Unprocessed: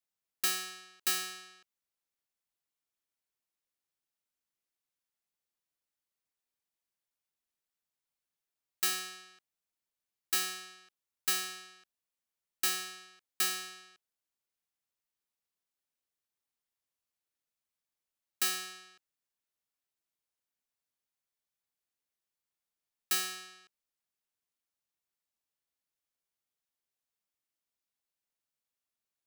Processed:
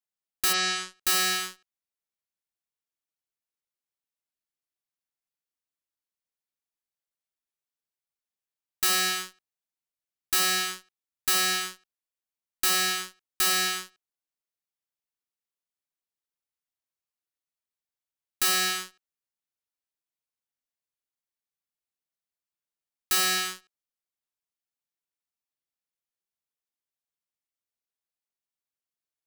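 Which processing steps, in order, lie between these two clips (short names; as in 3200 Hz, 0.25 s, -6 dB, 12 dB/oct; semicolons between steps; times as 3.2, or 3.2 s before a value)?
in parallel at -5.5 dB: fuzz box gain 51 dB, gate -52 dBFS; 0.52–1.01 on the sum: LPF 6200 Hz -> 11000 Hz 24 dB/oct; gain -5 dB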